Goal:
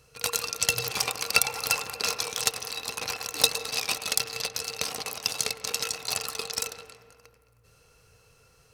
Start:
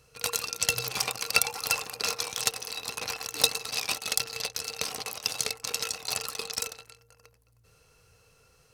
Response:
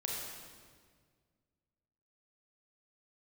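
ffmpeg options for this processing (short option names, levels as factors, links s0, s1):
-filter_complex "[0:a]asplit=2[s0][s1];[1:a]atrim=start_sample=2205,lowpass=2200,adelay=107[s2];[s1][s2]afir=irnorm=-1:irlink=0,volume=0.251[s3];[s0][s3]amix=inputs=2:normalize=0,volume=1.19"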